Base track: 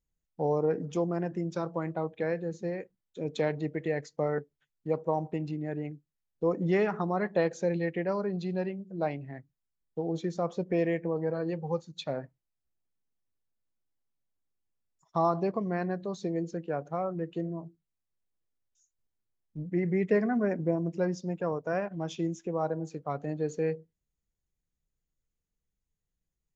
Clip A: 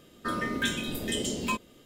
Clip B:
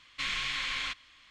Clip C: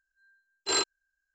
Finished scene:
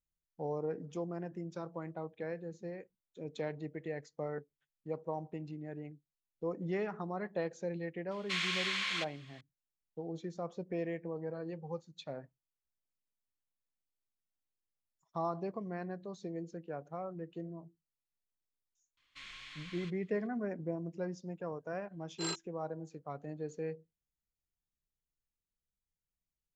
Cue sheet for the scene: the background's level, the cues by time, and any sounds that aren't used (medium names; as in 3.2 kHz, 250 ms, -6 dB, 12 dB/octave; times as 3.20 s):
base track -9.5 dB
8.11 s: add B -1.5 dB + Bessel high-pass 450 Hz
18.97 s: add B -17 dB
21.52 s: add C -12 dB
not used: A